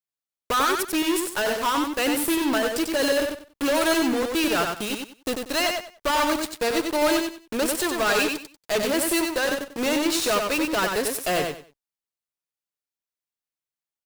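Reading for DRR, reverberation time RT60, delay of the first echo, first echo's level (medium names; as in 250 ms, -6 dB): no reverb, no reverb, 94 ms, -4.5 dB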